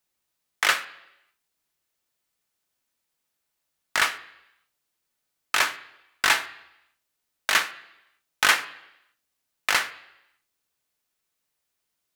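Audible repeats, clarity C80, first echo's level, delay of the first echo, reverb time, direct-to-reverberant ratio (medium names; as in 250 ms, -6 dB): no echo, 18.0 dB, no echo, no echo, 0.85 s, 10.0 dB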